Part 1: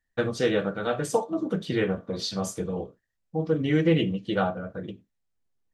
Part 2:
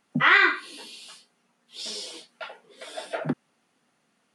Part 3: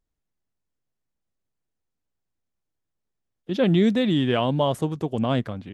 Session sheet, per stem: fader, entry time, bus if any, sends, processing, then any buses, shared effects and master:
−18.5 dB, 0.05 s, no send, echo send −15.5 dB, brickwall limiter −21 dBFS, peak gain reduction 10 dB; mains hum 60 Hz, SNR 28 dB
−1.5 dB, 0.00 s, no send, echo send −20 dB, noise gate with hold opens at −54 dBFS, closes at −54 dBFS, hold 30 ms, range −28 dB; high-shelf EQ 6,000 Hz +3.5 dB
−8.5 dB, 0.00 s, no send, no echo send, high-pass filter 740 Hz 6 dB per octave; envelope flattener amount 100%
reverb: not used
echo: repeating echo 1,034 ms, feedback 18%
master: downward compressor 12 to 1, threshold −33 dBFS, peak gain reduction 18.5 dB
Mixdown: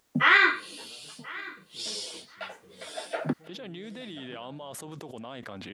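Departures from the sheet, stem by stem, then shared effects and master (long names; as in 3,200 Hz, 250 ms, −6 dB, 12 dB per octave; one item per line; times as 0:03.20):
stem 1 −18.5 dB → −26.5 dB
stem 3 −8.5 dB → −18.5 dB
master: missing downward compressor 12 to 1, threshold −33 dBFS, peak gain reduction 18.5 dB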